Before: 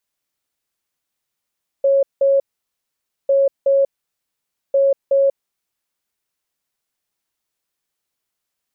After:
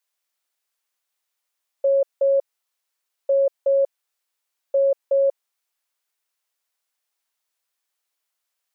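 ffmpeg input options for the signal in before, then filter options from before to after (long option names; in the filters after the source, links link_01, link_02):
-f lavfi -i "aevalsrc='0.282*sin(2*PI*550*t)*clip(min(mod(mod(t,1.45),0.37),0.19-mod(mod(t,1.45),0.37))/0.005,0,1)*lt(mod(t,1.45),0.74)':duration=4.35:sample_rate=44100"
-af "highpass=570"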